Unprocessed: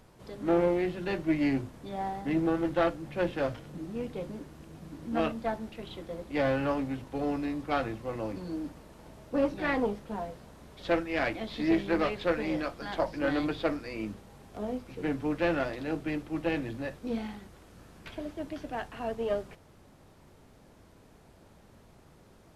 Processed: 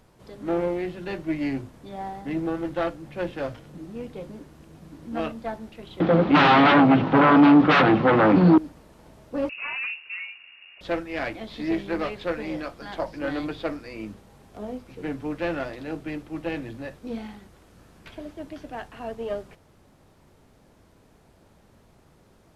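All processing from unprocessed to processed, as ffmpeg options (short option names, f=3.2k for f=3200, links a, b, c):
-filter_complex "[0:a]asettb=1/sr,asplit=3[a][b][c];[a]atrim=end=6.004[d];[b]atrim=start=6:end=8.58,asetpts=PTS-STARTPTS,afade=t=in:d=0.004:c=qsin,afade=t=out:st=2.576:d=0.004:c=qsin,aeval=exprs='0.178*sin(PI/2*7.08*val(0)/0.178)':c=same,highpass=140,equalizer=f=170:t=q:w=4:g=9,equalizer=f=300:t=q:w=4:g=5,equalizer=f=770:t=q:w=4:g=5,equalizer=f=1.3k:t=q:w=4:g=6,lowpass=f=3.5k:w=0.5412,lowpass=f=3.5k:w=1.3066[e];[c]atrim=start=8.576[f];[d][e]acrossfade=d=0.004:c1=hsin:c2=qsin[g];[g][f]acrossfade=d=0.004:c1=qsin:c2=hsin,asettb=1/sr,asplit=3[h][i][j];[h]atrim=end=9.494[k];[i]atrim=start=9.49:end=10.81,asetpts=PTS-STARTPTS,afade=t=in:d=0.004:c=qsin,afade=t=out:st=1.316:d=0.004:c=qsin,tiltshelf=f=650:g=3,asoftclip=type=hard:threshold=-28dB,lowpass=f=2.5k:t=q:w=0.5098,lowpass=f=2.5k:t=q:w=0.6013,lowpass=f=2.5k:t=q:w=0.9,lowpass=f=2.5k:t=q:w=2.563,afreqshift=-2900[l];[j]atrim=start=10.806[m];[k][l]acrossfade=d=0.004:c1=hsin:c2=qsin[n];[n][m]acrossfade=d=0.004:c1=qsin:c2=hsin"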